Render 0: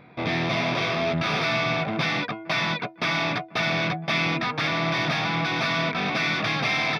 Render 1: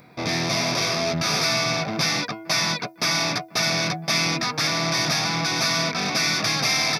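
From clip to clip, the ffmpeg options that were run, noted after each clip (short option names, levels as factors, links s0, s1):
-af "aexciter=amount=10.8:drive=3.9:freq=4800"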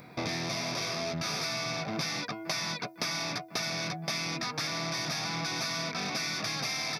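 -af "acompressor=threshold=0.0282:ratio=6"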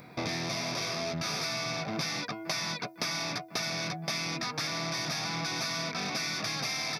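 -af anull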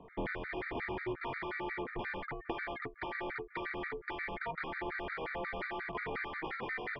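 -af "highpass=f=350:t=q:w=0.5412,highpass=f=350:t=q:w=1.307,lowpass=f=2800:t=q:w=0.5176,lowpass=f=2800:t=q:w=0.7071,lowpass=f=2800:t=q:w=1.932,afreqshift=-300,afftfilt=real='re*gt(sin(2*PI*5.6*pts/sr)*(1-2*mod(floor(b*sr/1024/1200),2)),0)':imag='im*gt(sin(2*PI*5.6*pts/sr)*(1-2*mod(floor(b*sr/1024/1200),2)),0)':win_size=1024:overlap=0.75,volume=1.12"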